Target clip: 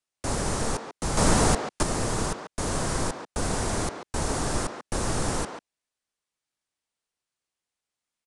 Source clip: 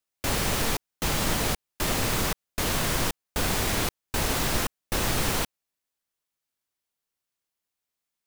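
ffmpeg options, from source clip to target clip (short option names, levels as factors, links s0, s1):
-filter_complex "[0:a]acrossover=split=330|1700|4800[s0][s1][s2][s3];[s2]aeval=exprs='(mod(66.8*val(0)+1,2)-1)/66.8':c=same[s4];[s0][s1][s4][s3]amix=inputs=4:normalize=0,aresample=22050,aresample=44100,asplit=2[s5][s6];[s6]adelay=140,highpass=300,lowpass=3400,asoftclip=type=hard:threshold=0.0631,volume=0.501[s7];[s5][s7]amix=inputs=2:normalize=0,asettb=1/sr,asplit=3[s8][s9][s10];[s8]atrim=end=1.174[s11];[s9]atrim=start=1.17:end=1.83,asetpts=PTS-STARTPTS,afade=t=in:d=0.004:c=qsin,afade=t=out:st=0.656:d=0.004:c=qsin,acontrast=78[s12];[s10]atrim=start=1.826[s13];[s11][s12]acrossfade=d=0.004:c1=hsin:c2=qsin[s14];[s14][s13]acrossfade=d=0.004:c1=qsin:c2=hsin"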